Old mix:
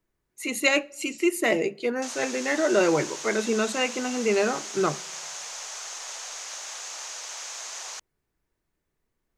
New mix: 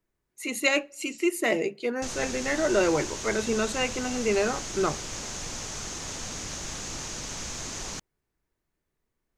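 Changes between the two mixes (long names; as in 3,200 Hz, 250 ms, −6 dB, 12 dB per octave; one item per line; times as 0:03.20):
speech: send −7.5 dB
background: remove high-pass filter 610 Hz 24 dB per octave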